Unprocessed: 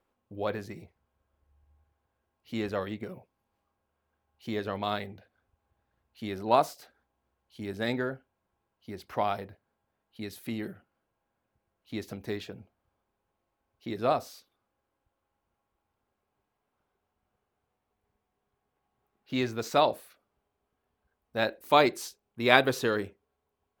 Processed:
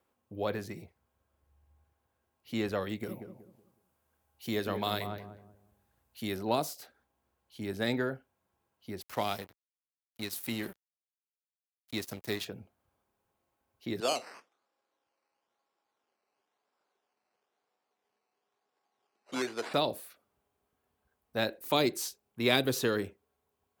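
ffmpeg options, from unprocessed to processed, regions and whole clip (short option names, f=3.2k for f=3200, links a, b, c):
-filter_complex "[0:a]asettb=1/sr,asplit=3[a][b][c];[a]atrim=end=2.894[d];[b]atrim=start=2.89:end=6.37,asetpts=PTS-STARTPTS,afade=t=in:d=0.004:c=qsin,afade=t=out:st=3.476:d=0.004:c=qsin,equalizer=f=14k:t=o:w=1.7:g=8.5,asplit=2[e][f];[f]adelay=186,lowpass=f=930:p=1,volume=-7dB,asplit=2[g][h];[h]adelay=186,lowpass=f=930:p=1,volume=0.33,asplit=2[i][j];[j]adelay=186,lowpass=f=930:p=1,volume=0.33,asplit=2[k][l];[l]adelay=186,lowpass=f=930:p=1,volume=0.33[m];[e][g][i][k][m]amix=inputs=5:normalize=0,atrim=end_sample=153468[n];[c]atrim=start=6.366[o];[d][n]acrossfade=d=0.004:c1=hsin:c2=qsin[p];[p][o]acrossfade=d=0.004:c1=qsin:c2=hsin,asettb=1/sr,asplit=3[q][r][s];[q]atrim=end=9.014[t];[r]atrim=start=9.01:end=12.45,asetpts=PTS-STARTPTS,afade=t=in:d=0.004:c=qsin,afade=t=out:st=3.436:d=0.004:c=qsin,highshelf=f=2.4k:g=9.5,aeval=exprs='sgn(val(0))*max(abs(val(0))-0.00562,0)':c=same[u];[s]atrim=start=12.446[v];[t][u]acrossfade=d=0.004:c1=hsin:c2=qsin[w];[w][v]acrossfade=d=0.004:c1=qsin:c2=hsin,asettb=1/sr,asplit=3[x][y][z];[x]atrim=end=14.004[aa];[y]atrim=start=14:end=19.74,asetpts=PTS-STARTPTS,afade=t=in:d=0.004:c=qsin,afade=t=out:st=5.736:d=0.004:c=qsin,acrusher=samples=10:mix=1:aa=0.000001:lfo=1:lforange=6:lforate=1,highpass=370,lowpass=6k[ab];[z]atrim=start=19.736[ac];[aa][ab]acrossfade=d=0.004:c1=hsin:c2=qsin[ad];[ad][ac]acrossfade=d=0.004:c1=qsin:c2=hsin,highpass=56,highshelf=f=7k:g=7,acrossover=split=430|3000[ae][af][ag];[af]acompressor=threshold=-31dB:ratio=6[ah];[ae][ah][ag]amix=inputs=3:normalize=0"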